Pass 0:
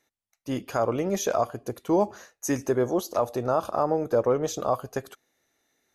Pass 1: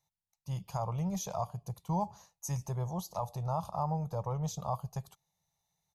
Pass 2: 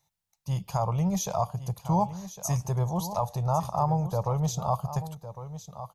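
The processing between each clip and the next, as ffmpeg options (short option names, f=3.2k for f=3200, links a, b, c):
-af "firequalizer=gain_entry='entry(110,0);entry(170,6);entry(250,-29);entry(900,-2);entry(1500,-24);entry(2200,-16);entry(4200,-8)':delay=0.05:min_phase=1"
-af "aecho=1:1:1106:0.237,volume=7.5dB"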